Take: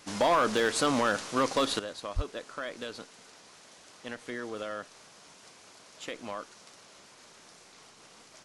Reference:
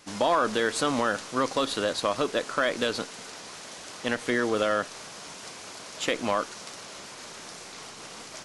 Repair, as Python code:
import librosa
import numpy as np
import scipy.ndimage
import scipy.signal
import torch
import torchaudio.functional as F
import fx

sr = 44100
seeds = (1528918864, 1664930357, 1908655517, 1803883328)

y = fx.fix_declip(x, sr, threshold_db=-18.5)
y = fx.fix_deplosive(y, sr, at_s=(2.15,))
y = fx.fix_level(y, sr, at_s=1.79, step_db=12.0)